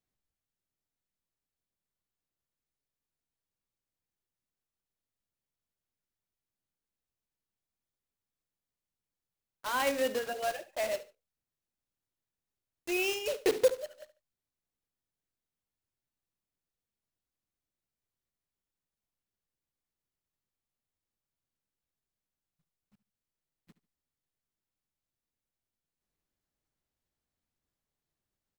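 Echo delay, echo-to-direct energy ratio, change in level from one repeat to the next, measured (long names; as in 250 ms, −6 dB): 72 ms, −16.0 dB, −12.0 dB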